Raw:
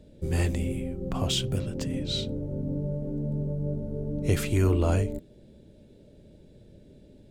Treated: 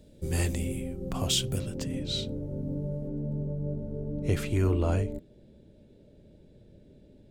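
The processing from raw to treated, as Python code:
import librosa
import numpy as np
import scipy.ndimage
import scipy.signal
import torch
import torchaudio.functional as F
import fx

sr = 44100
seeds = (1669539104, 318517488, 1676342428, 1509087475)

y = fx.high_shelf(x, sr, hz=4900.0, db=fx.steps((0.0, 10.0), (1.74, 3.0), (3.07, -6.0)))
y = y * librosa.db_to_amplitude(-2.5)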